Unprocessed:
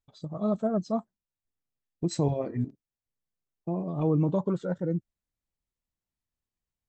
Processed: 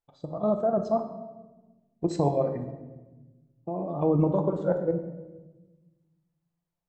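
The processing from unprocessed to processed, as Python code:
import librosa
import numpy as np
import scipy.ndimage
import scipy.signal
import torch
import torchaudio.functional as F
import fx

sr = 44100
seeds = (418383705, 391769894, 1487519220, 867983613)

y = fx.peak_eq(x, sr, hz=700.0, db=13.0, octaves=2.1)
y = fx.level_steps(y, sr, step_db=10)
y = fx.room_shoebox(y, sr, seeds[0], volume_m3=720.0, walls='mixed', distance_m=0.81)
y = F.gain(torch.from_numpy(y), -3.0).numpy()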